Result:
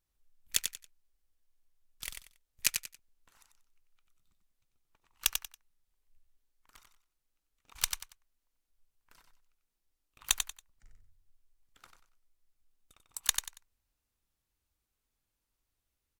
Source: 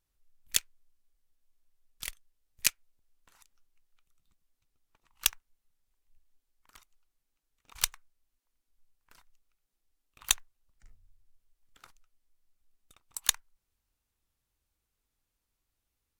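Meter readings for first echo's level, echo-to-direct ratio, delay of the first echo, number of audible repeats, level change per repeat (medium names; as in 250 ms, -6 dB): -6.0 dB, -5.5 dB, 93 ms, 3, -11.5 dB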